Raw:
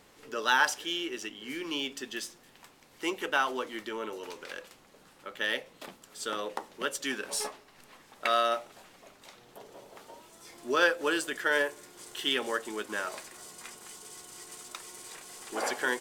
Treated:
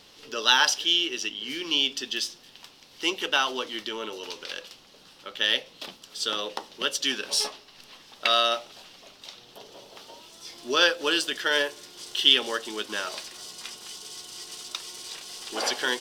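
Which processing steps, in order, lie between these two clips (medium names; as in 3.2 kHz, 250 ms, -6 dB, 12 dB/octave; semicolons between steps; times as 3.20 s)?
high-order bell 4 kHz +11 dB 1.3 oct; trim +1.5 dB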